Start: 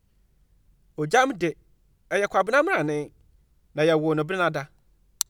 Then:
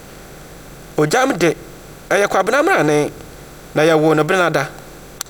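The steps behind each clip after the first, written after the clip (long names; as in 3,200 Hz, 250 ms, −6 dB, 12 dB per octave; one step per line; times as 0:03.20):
compressor on every frequency bin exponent 0.6
in parallel at +1 dB: downward compressor, threshold −26 dBFS, peak gain reduction 14 dB
on the sum: boost into a limiter +8.5 dB
level −3 dB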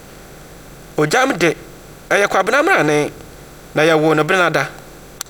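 dynamic equaliser 2,300 Hz, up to +5 dB, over −30 dBFS, Q 0.76
level −1 dB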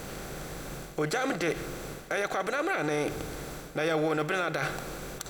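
reversed playback
downward compressor 12 to 1, threshold −21 dBFS, peak gain reduction 13.5 dB
reversed playback
brickwall limiter −18 dBFS, peak gain reduction 10 dB
four-comb reverb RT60 2.9 s, combs from 33 ms, DRR 14 dB
level −1.5 dB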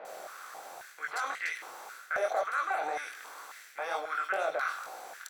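chorus effect 2 Hz, delay 17 ms, depth 5.9 ms
multiband delay without the direct sound lows, highs 50 ms, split 2,800 Hz
high-pass on a step sequencer 3.7 Hz 650–1,900 Hz
level −3.5 dB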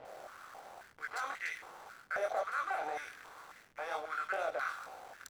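slack as between gear wheels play −43.5 dBFS
level −4.5 dB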